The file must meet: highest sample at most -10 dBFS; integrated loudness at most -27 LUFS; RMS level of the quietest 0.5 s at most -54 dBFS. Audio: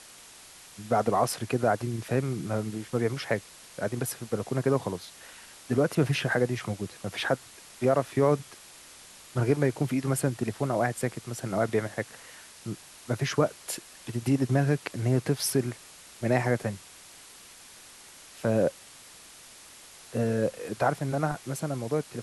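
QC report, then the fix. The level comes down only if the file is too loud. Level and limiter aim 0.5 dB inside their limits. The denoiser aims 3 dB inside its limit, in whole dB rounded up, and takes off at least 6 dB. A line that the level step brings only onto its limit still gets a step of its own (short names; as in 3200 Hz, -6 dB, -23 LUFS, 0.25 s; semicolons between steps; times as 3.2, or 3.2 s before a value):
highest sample -11.0 dBFS: OK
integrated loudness -29.0 LUFS: OK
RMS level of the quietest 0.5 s -50 dBFS: fail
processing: denoiser 7 dB, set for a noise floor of -50 dBFS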